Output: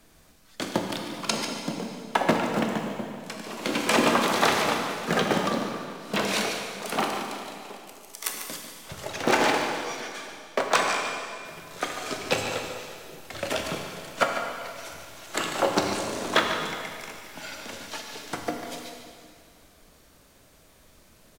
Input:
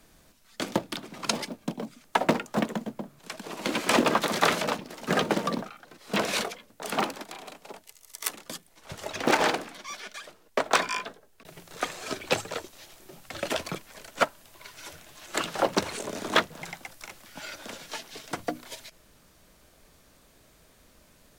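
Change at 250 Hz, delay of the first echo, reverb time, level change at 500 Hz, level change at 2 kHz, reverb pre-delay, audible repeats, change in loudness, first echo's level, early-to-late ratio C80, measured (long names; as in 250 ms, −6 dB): +2.0 dB, 146 ms, 2.2 s, +2.5 dB, +2.5 dB, 7 ms, 1, +1.5 dB, −10.0 dB, 3.5 dB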